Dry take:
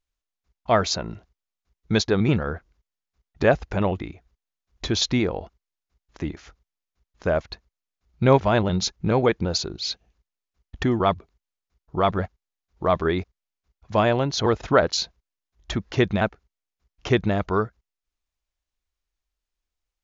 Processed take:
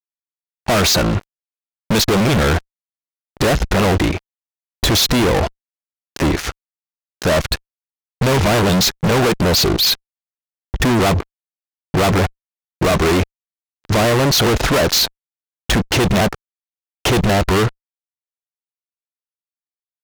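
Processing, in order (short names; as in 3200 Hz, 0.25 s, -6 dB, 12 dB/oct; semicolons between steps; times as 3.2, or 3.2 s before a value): gate with hold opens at -45 dBFS; fuzz box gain 43 dB, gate -49 dBFS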